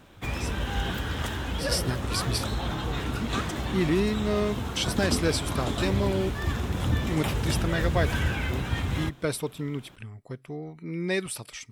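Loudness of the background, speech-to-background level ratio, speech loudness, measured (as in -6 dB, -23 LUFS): -30.0 LUFS, -0.5 dB, -30.5 LUFS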